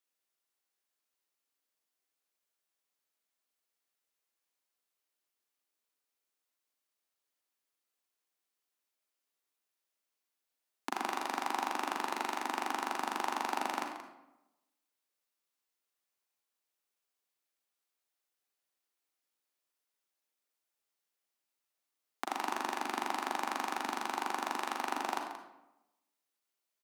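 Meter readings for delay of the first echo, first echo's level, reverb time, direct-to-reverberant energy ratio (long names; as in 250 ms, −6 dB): 179 ms, −12.0 dB, 0.95 s, 3.0 dB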